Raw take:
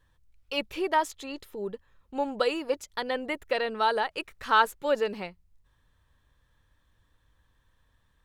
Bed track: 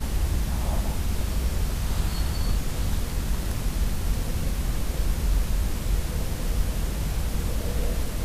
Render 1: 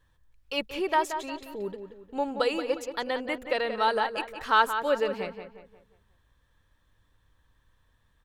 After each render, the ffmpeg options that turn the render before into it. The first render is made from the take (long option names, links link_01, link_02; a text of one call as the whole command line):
ffmpeg -i in.wav -filter_complex "[0:a]asplit=2[link_01][link_02];[link_02]adelay=178,lowpass=frequency=3100:poles=1,volume=-8.5dB,asplit=2[link_03][link_04];[link_04]adelay=178,lowpass=frequency=3100:poles=1,volume=0.41,asplit=2[link_05][link_06];[link_06]adelay=178,lowpass=frequency=3100:poles=1,volume=0.41,asplit=2[link_07][link_08];[link_08]adelay=178,lowpass=frequency=3100:poles=1,volume=0.41,asplit=2[link_09][link_10];[link_10]adelay=178,lowpass=frequency=3100:poles=1,volume=0.41[link_11];[link_01][link_03][link_05][link_07][link_09][link_11]amix=inputs=6:normalize=0" out.wav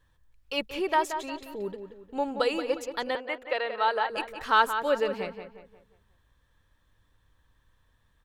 ffmpeg -i in.wav -filter_complex "[0:a]asettb=1/sr,asplit=3[link_01][link_02][link_03];[link_01]atrim=end=3.154[link_04];[link_02]atrim=start=3.15:end=4.1,asetpts=PTS-STARTPTS,afade=type=in:duration=0.004:curve=qsin,afade=type=out:start_time=0.946:duration=0.004:curve=qsin,acrossover=split=380 4300:gain=0.141 1 0.224[link_05][link_06][link_07];[link_05][link_06][link_07]amix=inputs=3:normalize=0[link_08];[link_03]atrim=start=4.096[link_09];[link_04][link_08]acrossfade=duration=0.004:curve1=hsin:curve2=qsin[link_10];[link_10][link_09]acrossfade=duration=0.004:curve1=qsin:curve2=hsin" out.wav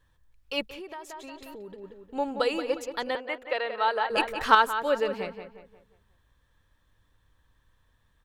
ffmpeg -i in.wav -filter_complex "[0:a]asettb=1/sr,asplit=3[link_01][link_02][link_03];[link_01]atrim=end=0.634[link_04];[link_02]atrim=start=0.63:end=1.84,asetpts=PTS-STARTPTS,afade=type=in:duration=0.004:curve=qsin,afade=type=out:start_time=1.206:duration=0.004:curve=qsin,acompressor=threshold=-39dB:ratio=5:attack=3.2:release=140:knee=1:detection=peak[link_05];[link_03]atrim=start=1.836[link_06];[link_04][link_05]acrossfade=duration=0.004:curve1=hsin:curve2=qsin[link_07];[link_07][link_06]acrossfade=duration=0.004:curve1=qsin:curve2=hsin,asettb=1/sr,asplit=3[link_08][link_09][link_10];[link_08]atrim=end=4.104[link_11];[link_09]atrim=start=4.1:end=4.55,asetpts=PTS-STARTPTS,afade=type=in:duration=0.004:curve=qsin,afade=type=out:start_time=0.446:duration=0.004:curve=qsin,acontrast=83[link_12];[link_10]atrim=start=4.546[link_13];[link_11][link_12]acrossfade=duration=0.004:curve1=hsin:curve2=qsin[link_14];[link_14][link_13]acrossfade=duration=0.004:curve1=qsin:curve2=hsin" out.wav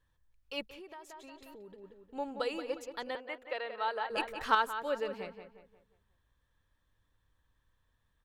ffmpeg -i in.wav -af "volume=-8.5dB" out.wav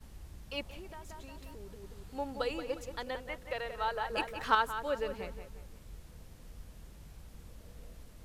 ffmpeg -i in.wav -i bed.wav -filter_complex "[1:a]volume=-24.5dB[link_01];[0:a][link_01]amix=inputs=2:normalize=0" out.wav